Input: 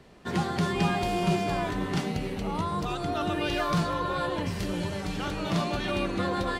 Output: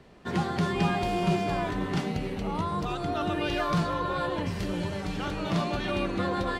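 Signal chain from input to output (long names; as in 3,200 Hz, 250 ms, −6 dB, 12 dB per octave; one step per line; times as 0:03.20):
high-shelf EQ 5,400 Hz −6 dB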